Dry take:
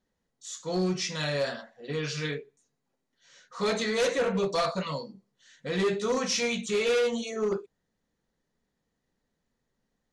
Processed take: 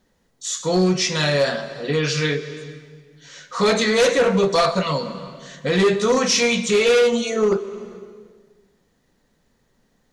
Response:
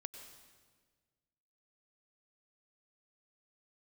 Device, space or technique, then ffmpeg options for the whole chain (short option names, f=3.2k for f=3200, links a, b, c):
compressed reverb return: -filter_complex "[0:a]asplit=2[a][b];[1:a]atrim=start_sample=2205[c];[b][c]afir=irnorm=-1:irlink=0,acompressor=threshold=-42dB:ratio=4,volume=7.5dB[d];[a][d]amix=inputs=2:normalize=0,volume=7dB"